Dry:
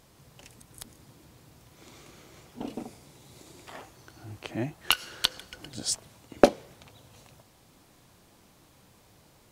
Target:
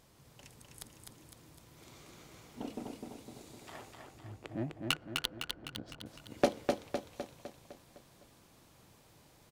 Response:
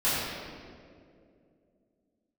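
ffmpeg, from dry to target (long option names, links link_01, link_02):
-filter_complex "[0:a]asettb=1/sr,asplit=3[link_01][link_02][link_03];[link_01]atrim=end=3.934[link_04];[link_02]atrim=start=3.93:end=6.06,asetpts=PTS-STARTPTS,afade=type=in:duration=0.004:curve=qsin,afade=type=out:start_time=2.126:duration=0.004:curve=qsin,adynamicsmooth=sensitivity=1.5:basefreq=730[link_05];[link_03]atrim=start=6.056[link_06];[link_04][link_05]acrossfade=duration=0.004:curve1=hsin:curve2=qsin[link_07];[link_07][link_06]acrossfade=duration=0.004:curve1=qsin:curve2=hsin,asoftclip=type=tanh:threshold=-12dB,aecho=1:1:254|508|762|1016|1270|1524|1778:0.631|0.341|0.184|0.0994|0.0537|0.029|0.0156,volume=-5dB"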